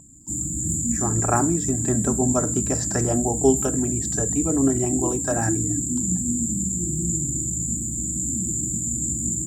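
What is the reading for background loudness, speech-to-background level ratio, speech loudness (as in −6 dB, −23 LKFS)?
−23.5 LKFS, −1.0 dB, −24.5 LKFS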